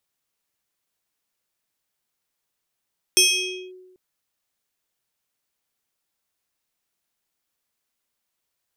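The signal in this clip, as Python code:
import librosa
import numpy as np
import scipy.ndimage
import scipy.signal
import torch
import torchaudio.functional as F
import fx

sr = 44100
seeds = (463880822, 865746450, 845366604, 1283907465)

y = fx.fm2(sr, length_s=0.79, level_db=-10.5, carrier_hz=369.0, ratio=7.84, index=3.1, index_s=0.55, decay_s=1.14, shape='linear')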